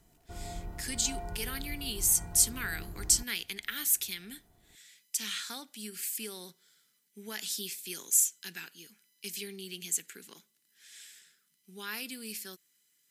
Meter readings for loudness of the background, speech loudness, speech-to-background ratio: -44.5 LUFS, -31.0 LUFS, 13.5 dB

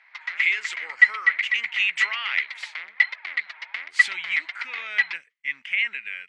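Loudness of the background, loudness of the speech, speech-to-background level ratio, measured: -23.5 LUFS, -27.0 LUFS, -3.5 dB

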